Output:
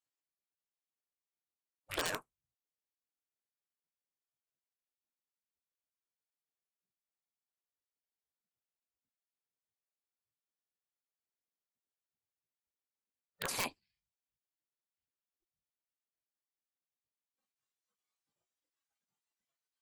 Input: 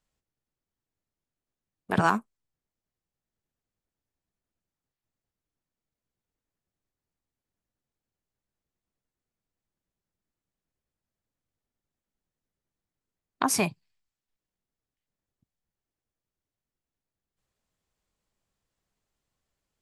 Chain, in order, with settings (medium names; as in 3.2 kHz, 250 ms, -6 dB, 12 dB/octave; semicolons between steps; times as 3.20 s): spectral gate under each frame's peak -15 dB weak; integer overflow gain 24.5 dB; spectral noise reduction 11 dB